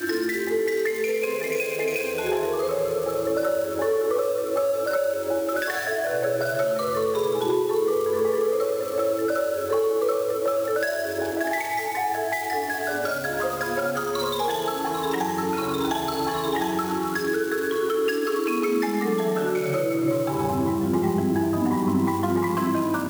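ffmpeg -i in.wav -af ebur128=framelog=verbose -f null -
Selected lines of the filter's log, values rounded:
Integrated loudness:
  I:         -24.6 LUFS
  Threshold: -34.6 LUFS
Loudness range:
  LRA:         2.1 LU
  Threshold: -44.6 LUFS
  LRA low:   -25.8 LUFS
  LRA high:  -23.7 LUFS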